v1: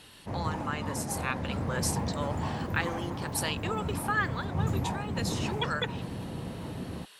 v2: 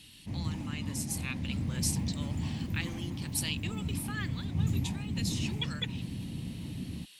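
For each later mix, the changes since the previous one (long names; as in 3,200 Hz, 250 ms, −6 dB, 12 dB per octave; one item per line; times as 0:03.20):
master: add flat-topped bell 810 Hz −15.5 dB 2.4 octaves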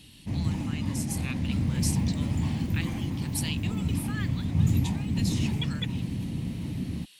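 background +6.5 dB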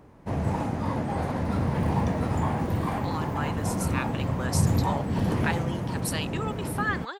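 speech: entry +2.70 s
master: add flat-topped bell 810 Hz +15.5 dB 2.4 octaves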